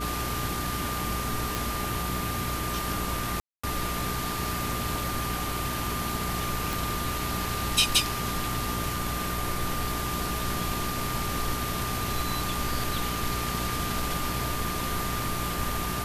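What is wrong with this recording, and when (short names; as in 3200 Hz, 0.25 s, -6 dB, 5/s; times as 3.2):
hum 60 Hz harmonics 7 -35 dBFS
tone 1200 Hz -34 dBFS
1.55 pop
3.4–3.63 gap 0.235 s
6.73 pop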